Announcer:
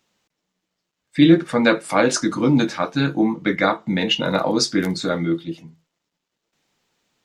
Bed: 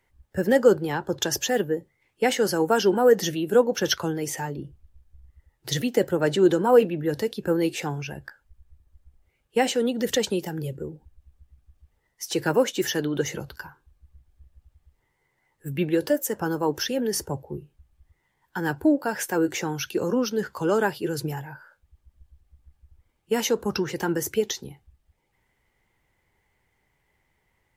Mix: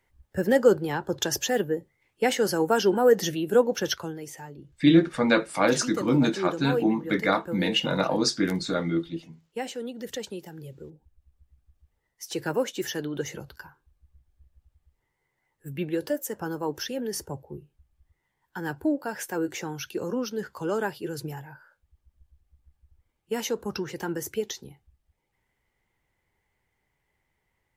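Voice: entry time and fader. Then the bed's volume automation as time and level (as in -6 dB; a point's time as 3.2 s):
3.65 s, -5.0 dB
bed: 3.72 s -1.5 dB
4.31 s -11 dB
10.59 s -11 dB
11.5 s -5.5 dB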